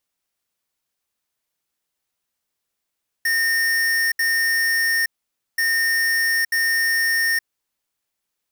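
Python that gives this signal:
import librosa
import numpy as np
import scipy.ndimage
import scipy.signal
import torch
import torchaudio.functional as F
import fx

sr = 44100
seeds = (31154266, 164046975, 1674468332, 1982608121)

y = fx.beep_pattern(sr, wave='square', hz=1830.0, on_s=0.87, off_s=0.07, beeps=2, pause_s=0.52, groups=2, level_db=-19.5)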